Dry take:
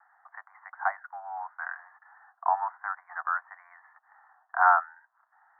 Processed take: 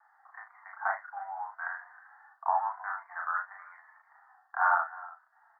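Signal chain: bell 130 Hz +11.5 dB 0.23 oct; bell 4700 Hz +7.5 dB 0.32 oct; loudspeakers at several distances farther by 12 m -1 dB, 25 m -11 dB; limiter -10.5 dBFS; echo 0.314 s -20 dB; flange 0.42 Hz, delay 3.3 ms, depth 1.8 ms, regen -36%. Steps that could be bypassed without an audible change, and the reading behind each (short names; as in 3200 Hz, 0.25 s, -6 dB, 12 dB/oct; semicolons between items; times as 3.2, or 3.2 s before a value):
bell 130 Hz: input band starts at 570 Hz; bell 4700 Hz: input band ends at 2000 Hz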